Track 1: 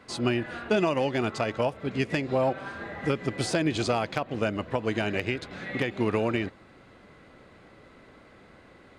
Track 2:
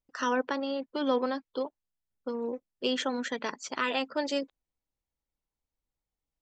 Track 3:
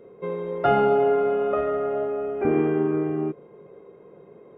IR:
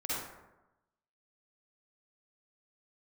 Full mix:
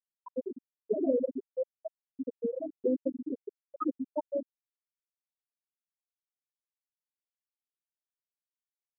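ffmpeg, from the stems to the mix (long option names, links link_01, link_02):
-filter_complex "[0:a]adynamicequalizer=threshold=0.00398:dfrequency=4400:dqfactor=0.7:tfrequency=4400:tqfactor=0.7:attack=5:release=100:ratio=0.375:range=2.5:mode=cutabove:tftype=highshelf,adelay=200,volume=-3dB,asplit=2[link_01][link_02];[link_02]volume=-20dB[link_03];[1:a]adynamicequalizer=threshold=0.00447:dfrequency=630:dqfactor=4.1:tfrequency=630:tqfactor=4.1:attack=5:release=100:ratio=0.375:range=2.5:mode=cutabove:tftype=bell,dynaudnorm=framelen=390:gausssize=7:maxgain=4dB,volume=0dB,asplit=2[link_04][link_05];[link_05]volume=-22dB[link_06];[2:a]equalizer=frequency=125:width_type=o:width=1:gain=-8,equalizer=frequency=250:width_type=o:width=1:gain=9,equalizer=frequency=500:width_type=o:width=1:gain=-8,equalizer=frequency=1000:width_type=o:width=1:gain=-5,equalizer=frequency=2000:width_type=o:width=1:gain=-9,aeval=exprs='(tanh(22.4*val(0)+0.2)-tanh(0.2))/22.4':channel_layout=same,crystalizer=i=2.5:c=0,volume=-5.5dB,asplit=2[link_07][link_08];[link_08]volume=-10dB[link_09];[3:a]atrim=start_sample=2205[link_10];[link_03][link_06][link_09]amix=inputs=3:normalize=0[link_11];[link_11][link_10]afir=irnorm=-1:irlink=0[link_12];[link_01][link_04][link_07][link_12]amix=inputs=4:normalize=0,aeval=exprs='val(0)*gte(abs(val(0)),0.0355)':channel_layout=same,afftfilt=real='re*gte(hypot(re,im),0.447)':imag='im*gte(hypot(re,im),0.447)':win_size=1024:overlap=0.75"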